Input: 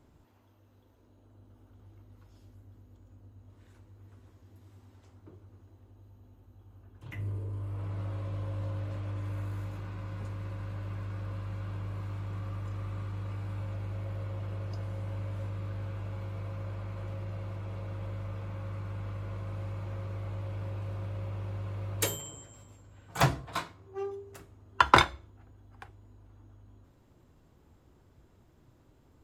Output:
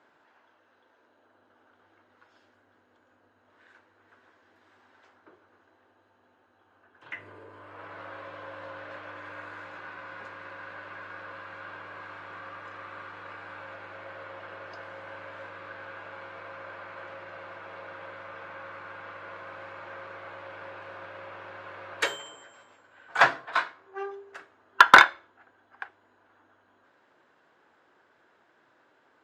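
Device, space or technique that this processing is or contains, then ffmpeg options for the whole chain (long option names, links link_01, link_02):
megaphone: -af "highpass=590,lowpass=3600,equalizer=frequency=1600:width_type=o:width=0.43:gain=9.5,asoftclip=type=hard:threshold=-9.5dB,volume=6.5dB"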